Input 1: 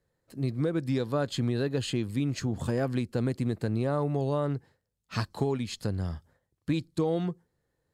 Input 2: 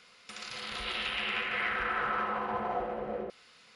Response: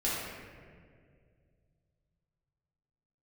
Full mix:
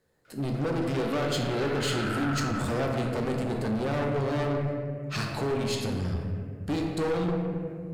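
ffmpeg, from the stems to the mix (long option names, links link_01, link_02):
-filter_complex "[0:a]asoftclip=type=hard:threshold=-28.5dB,volume=2.5dB,asplit=2[link_01][link_02];[link_02]volume=-3.5dB[link_03];[1:a]highpass=frequency=1400:width_type=q:width=9.1,adelay=250,volume=-13dB[link_04];[2:a]atrim=start_sample=2205[link_05];[link_03][link_05]afir=irnorm=-1:irlink=0[link_06];[link_01][link_04][link_06]amix=inputs=3:normalize=0,lowshelf=frequency=110:gain=-9.5,aeval=exprs='(tanh(14.1*val(0)+0.25)-tanh(0.25))/14.1':channel_layout=same"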